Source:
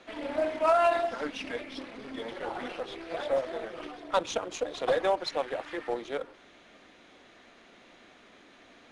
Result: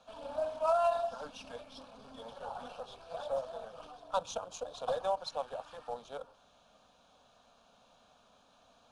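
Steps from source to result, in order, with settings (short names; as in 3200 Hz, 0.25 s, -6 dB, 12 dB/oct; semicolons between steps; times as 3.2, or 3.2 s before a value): fixed phaser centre 830 Hz, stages 4; gain -4 dB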